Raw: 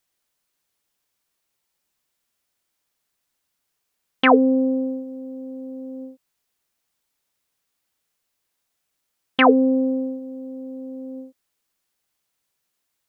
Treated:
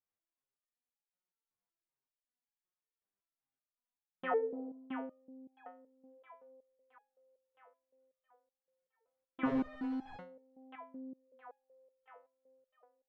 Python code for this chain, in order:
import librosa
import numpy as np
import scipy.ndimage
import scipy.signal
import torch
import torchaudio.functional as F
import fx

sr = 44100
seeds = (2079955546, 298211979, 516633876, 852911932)

y = fx.echo_split(x, sr, split_hz=590.0, low_ms=86, high_ms=667, feedback_pct=52, wet_db=-7.5)
y = fx.schmitt(y, sr, flips_db=-25.5, at=(9.45, 10.17))
y = scipy.signal.sosfilt(scipy.signal.butter(2, 1400.0, 'lowpass', fs=sr, output='sos'), y)
y = fx.resonator_held(y, sr, hz=5.3, low_hz=99.0, high_hz=830.0)
y = F.gain(torch.from_numpy(y), -5.0).numpy()